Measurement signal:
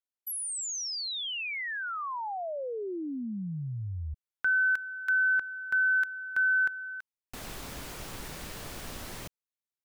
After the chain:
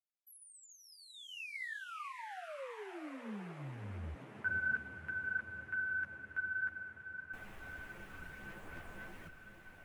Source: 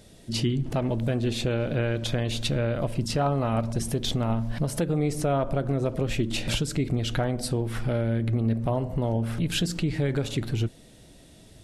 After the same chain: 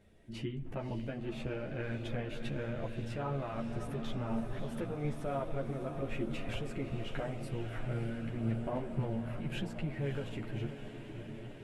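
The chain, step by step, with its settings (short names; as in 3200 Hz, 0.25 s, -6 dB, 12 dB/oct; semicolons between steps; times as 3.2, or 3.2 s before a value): resonant high shelf 3200 Hz -10.5 dB, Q 1.5; diffused feedback echo 0.592 s, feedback 73%, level -8.5 dB; chorus voices 6, 0.95 Hz, delay 12 ms, depth 3 ms; gain -9 dB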